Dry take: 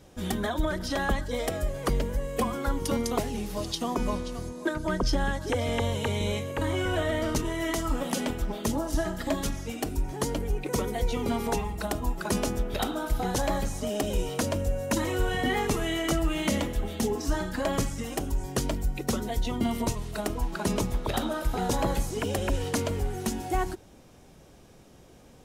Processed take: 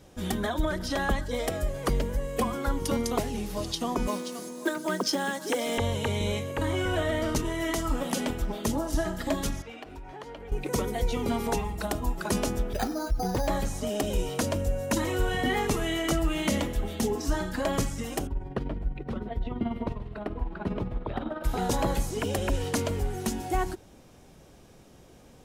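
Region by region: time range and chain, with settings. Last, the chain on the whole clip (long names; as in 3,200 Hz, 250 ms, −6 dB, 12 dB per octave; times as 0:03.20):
0:04.07–0:05.78: Butterworth high-pass 190 Hz + high-shelf EQ 5,800 Hz +9.5 dB + log-companded quantiser 6 bits
0:09.62–0:10.52: three-way crossover with the lows and the highs turned down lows −12 dB, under 480 Hz, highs −21 dB, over 3,700 Hz + downward compressor 10 to 1, threshold −37 dBFS
0:12.73–0:13.48: expanding power law on the bin magnitudes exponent 1.5 + bad sample-rate conversion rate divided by 8×, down none, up hold
0:18.27–0:21.44: amplitude modulation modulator 20 Hz, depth 45% + high-frequency loss of the air 460 metres + single-tap delay 131 ms −17.5 dB
whole clip: no processing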